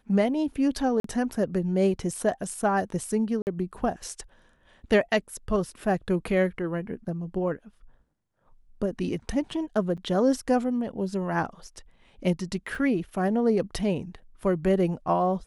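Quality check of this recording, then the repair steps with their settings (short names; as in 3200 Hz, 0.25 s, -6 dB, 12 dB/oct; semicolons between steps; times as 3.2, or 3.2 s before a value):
1–1.04 gap 43 ms
3.42–3.47 gap 49 ms
9.97–9.98 gap 6.8 ms
12.75 gap 2.2 ms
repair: interpolate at 1, 43 ms; interpolate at 3.42, 49 ms; interpolate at 9.97, 6.8 ms; interpolate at 12.75, 2.2 ms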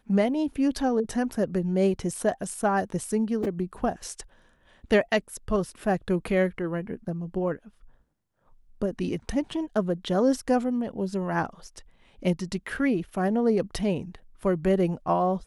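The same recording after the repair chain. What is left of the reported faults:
none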